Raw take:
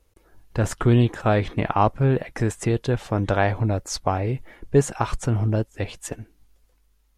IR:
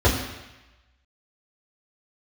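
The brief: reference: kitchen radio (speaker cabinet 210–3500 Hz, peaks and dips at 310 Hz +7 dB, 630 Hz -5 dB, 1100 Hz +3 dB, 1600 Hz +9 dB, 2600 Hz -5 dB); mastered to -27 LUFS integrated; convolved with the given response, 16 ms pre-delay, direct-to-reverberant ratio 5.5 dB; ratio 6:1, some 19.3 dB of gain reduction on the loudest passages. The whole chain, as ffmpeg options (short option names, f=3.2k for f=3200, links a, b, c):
-filter_complex "[0:a]acompressor=threshold=-34dB:ratio=6,asplit=2[a][b];[1:a]atrim=start_sample=2205,adelay=16[c];[b][c]afir=irnorm=-1:irlink=0,volume=-24.5dB[d];[a][d]amix=inputs=2:normalize=0,highpass=210,equalizer=f=310:t=q:w=4:g=7,equalizer=f=630:t=q:w=4:g=-5,equalizer=f=1.1k:t=q:w=4:g=3,equalizer=f=1.6k:t=q:w=4:g=9,equalizer=f=2.6k:t=q:w=4:g=-5,lowpass=f=3.5k:w=0.5412,lowpass=f=3.5k:w=1.3066,volume=10.5dB"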